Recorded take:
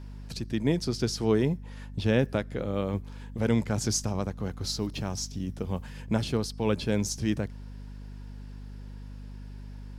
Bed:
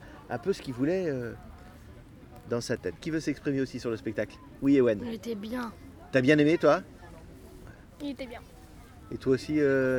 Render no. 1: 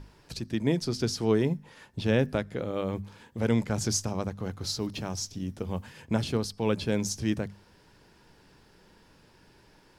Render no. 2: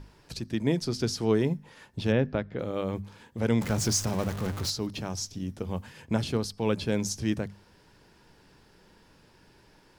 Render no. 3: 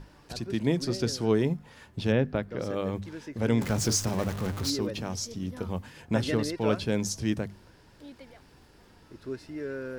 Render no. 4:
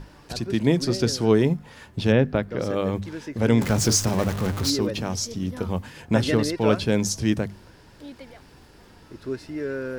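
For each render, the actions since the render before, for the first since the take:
hum notches 50/100/150/200/250 Hz
2.12–2.59 s: distance through air 210 m; 3.61–4.70 s: jump at every zero crossing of -32 dBFS
add bed -11 dB
trim +6 dB

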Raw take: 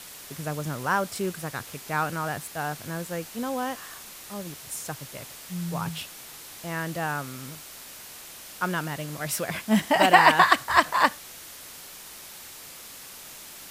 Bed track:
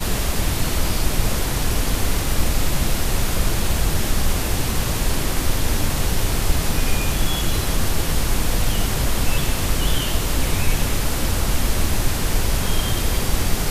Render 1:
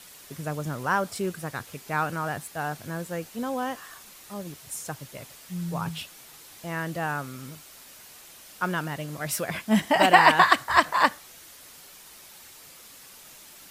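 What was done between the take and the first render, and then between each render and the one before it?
noise reduction 6 dB, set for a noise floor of -44 dBFS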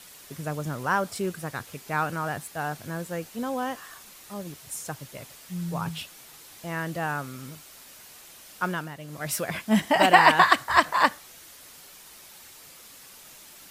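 8.65–9.29 s: dip -8 dB, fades 0.30 s linear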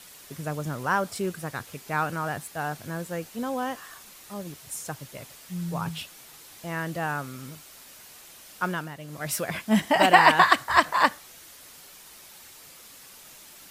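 no audible change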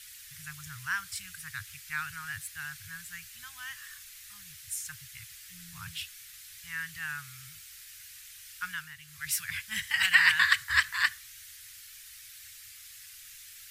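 elliptic band-stop 100–1700 Hz, stop band 70 dB; dynamic bell 370 Hz, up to +8 dB, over -56 dBFS, Q 1.2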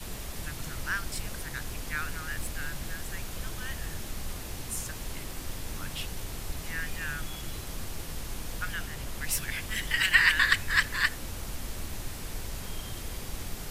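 add bed track -17.5 dB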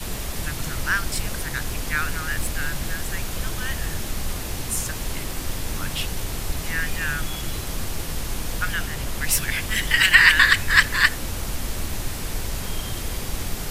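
trim +9 dB; peak limiter -1 dBFS, peak gain reduction 3 dB

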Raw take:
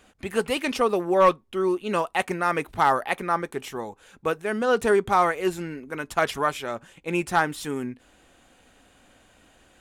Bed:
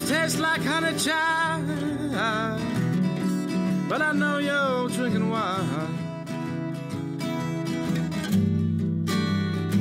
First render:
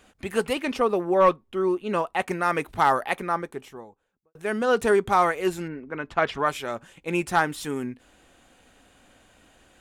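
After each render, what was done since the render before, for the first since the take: 0.53–2.28 s: treble shelf 3 kHz -8 dB; 3.04–4.35 s: studio fade out; 5.67–6.45 s: low-pass 1.7 kHz -> 4.3 kHz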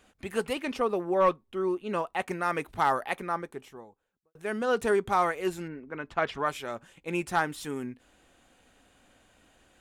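trim -5 dB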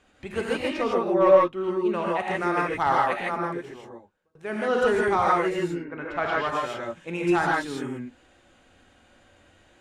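distance through air 59 m; gated-style reverb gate 180 ms rising, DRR -3.5 dB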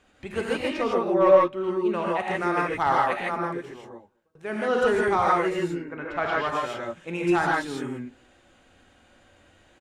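echo from a far wall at 37 m, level -29 dB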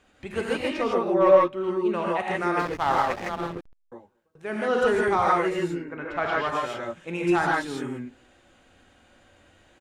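2.59–3.92 s: hysteresis with a dead band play -25 dBFS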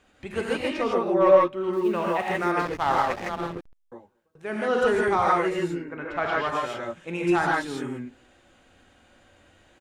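1.73–2.52 s: companding laws mixed up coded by mu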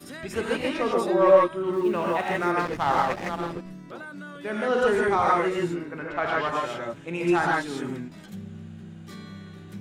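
add bed -16.5 dB

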